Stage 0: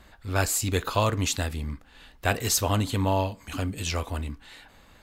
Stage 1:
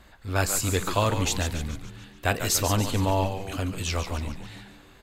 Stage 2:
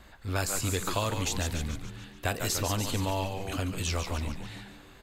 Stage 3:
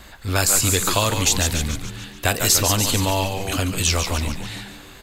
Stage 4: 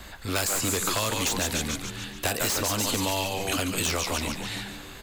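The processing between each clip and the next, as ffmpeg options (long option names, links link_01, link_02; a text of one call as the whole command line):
ffmpeg -i in.wav -filter_complex "[0:a]asplit=7[link_01][link_02][link_03][link_04][link_05][link_06][link_07];[link_02]adelay=143,afreqshift=-93,volume=-8.5dB[link_08];[link_03]adelay=286,afreqshift=-186,volume=-14.3dB[link_09];[link_04]adelay=429,afreqshift=-279,volume=-20.2dB[link_10];[link_05]adelay=572,afreqshift=-372,volume=-26dB[link_11];[link_06]adelay=715,afreqshift=-465,volume=-31.9dB[link_12];[link_07]adelay=858,afreqshift=-558,volume=-37.7dB[link_13];[link_01][link_08][link_09][link_10][link_11][link_12][link_13]amix=inputs=7:normalize=0" out.wav
ffmpeg -i in.wav -filter_complex "[0:a]acrossover=split=1600|4000[link_01][link_02][link_03];[link_01]acompressor=threshold=-28dB:ratio=4[link_04];[link_02]acompressor=threshold=-39dB:ratio=4[link_05];[link_03]acompressor=threshold=-32dB:ratio=4[link_06];[link_04][link_05][link_06]amix=inputs=3:normalize=0" out.wav
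ffmpeg -i in.wav -af "highshelf=frequency=2900:gain=7.5,volume=8.5dB" out.wav
ffmpeg -i in.wav -filter_complex "[0:a]aeval=exprs='0.211*(abs(mod(val(0)/0.211+3,4)-2)-1)':channel_layout=same,acrossover=split=190|2000[link_01][link_02][link_03];[link_01]acompressor=threshold=-38dB:ratio=4[link_04];[link_02]acompressor=threshold=-27dB:ratio=4[link_05];[link_03]acompressor=threshold=-27dB:ratio=4[link_06];[link_04][link_05][link_06]amix=inputs=3:normalize=0" out.wav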